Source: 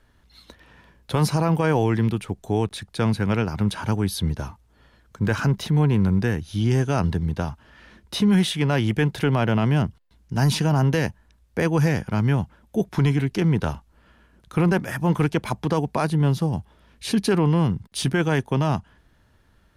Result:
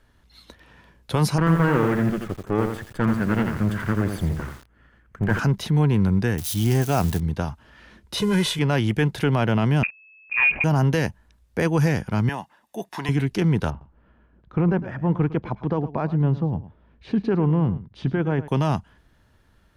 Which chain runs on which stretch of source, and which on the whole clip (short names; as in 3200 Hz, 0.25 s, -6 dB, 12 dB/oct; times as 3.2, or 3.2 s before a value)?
1.38–5.39 minimum comb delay 0.64 ms + resonant high shelf 3000 Hz -10.5 dB, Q 1.5 + lo-fi delay 85 ms, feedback 35%, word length 7-bit, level -5.5 dB
6.38–7.2 switching spikes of -21.5 dBFS + bell 730 Hz +7 dB 0.22 oct
8.17–8.59 CVSD 64 kbps + comb 2 ms, depth 78%
9.83–10.64 level-crossing sampler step -42.5 dBFS + inverted band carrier 2600 Hz + Doppler distortion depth 0.18 ms
12.29–13.09 HPF 440 Hz + comb 1.1 ms, depth 50%
13.7–18.48 tape spacing loss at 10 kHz 43 dB + echo 0.107 s -15.5 dB
whole clip: dry